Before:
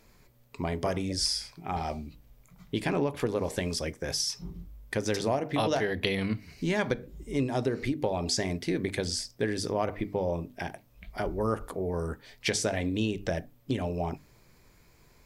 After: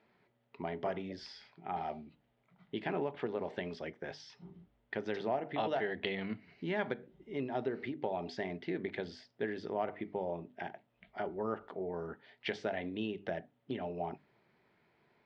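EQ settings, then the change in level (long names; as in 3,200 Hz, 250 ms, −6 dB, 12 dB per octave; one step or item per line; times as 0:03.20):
loudspeaker in its box 260–2,900 Hz, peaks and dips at 290 Hz −7 dB, 510 Hz −8 dB, 1,100 Hz −8 dB, 1,600 Hz −3 dB, 2,400 Hz −7 dB
−2.0 dB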